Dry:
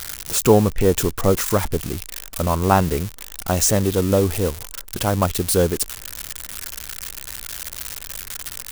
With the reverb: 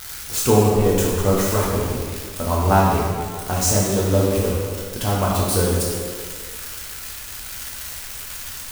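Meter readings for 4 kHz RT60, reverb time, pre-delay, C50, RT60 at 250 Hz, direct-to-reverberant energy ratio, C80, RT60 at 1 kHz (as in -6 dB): 1.4 s, 1.8 s, 5 ms, -0.5 dB, 1.7 s, -5.5 dB, 1.5 dB, 1.8 s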